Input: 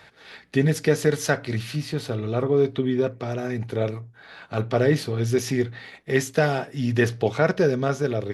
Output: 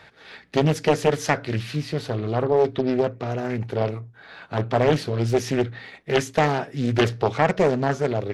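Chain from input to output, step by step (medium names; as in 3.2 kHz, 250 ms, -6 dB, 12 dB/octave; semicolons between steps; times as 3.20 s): treble shelf 7.3 kHz -7.5 dB; loudspeaker Doppler distortion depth 0.7 ms; trim +1.5 dB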